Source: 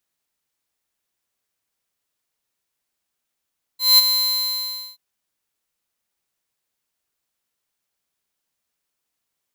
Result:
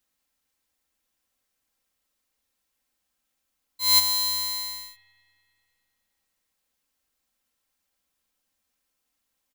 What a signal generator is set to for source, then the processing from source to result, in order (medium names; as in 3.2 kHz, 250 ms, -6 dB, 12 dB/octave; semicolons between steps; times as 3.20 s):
ADSR square 4.1 kHz, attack 192 ms, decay 24 ms, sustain -8.5 dB, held 0.29 s, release 890 ms -10 dBFS
bass shelf 130 Hz +6.5 dB; comb 3.8 ms, depth 53%; spring tank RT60 2.6 s, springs 41 ms, chirp 70 ms, DRR 12 dB